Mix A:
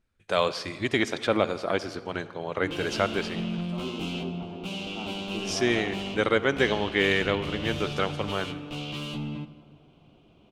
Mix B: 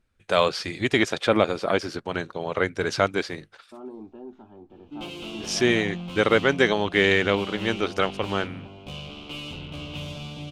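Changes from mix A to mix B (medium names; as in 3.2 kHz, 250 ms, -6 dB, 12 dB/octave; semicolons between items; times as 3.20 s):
first voice +5.0 dB; background: entry +2.30 s; reverb: off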